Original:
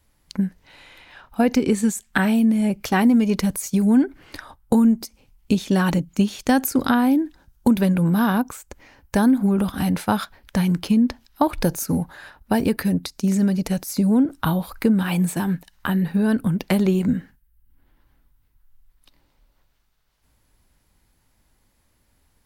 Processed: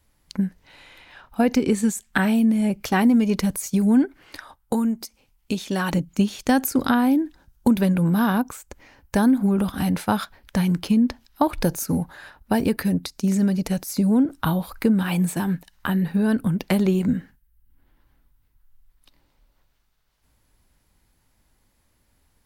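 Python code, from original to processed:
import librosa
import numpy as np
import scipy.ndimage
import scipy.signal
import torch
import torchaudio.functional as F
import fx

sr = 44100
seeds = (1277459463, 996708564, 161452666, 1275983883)

y = fx.low_shelf(x, sr, hz=350.0, db=-8.0, at=(4.05, 5.93))
y = y * librosa.db_to_amplitude(-1.0)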